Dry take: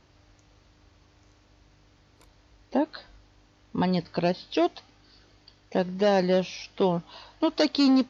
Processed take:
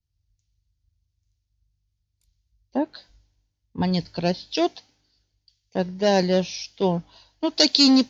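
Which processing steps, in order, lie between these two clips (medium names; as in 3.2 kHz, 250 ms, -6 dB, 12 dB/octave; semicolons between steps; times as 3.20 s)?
tone controls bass +3 dB, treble +10 dB; band-stop 1.2 kHz, Q 6; three bands expanded up and down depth 100%; trim -1 dB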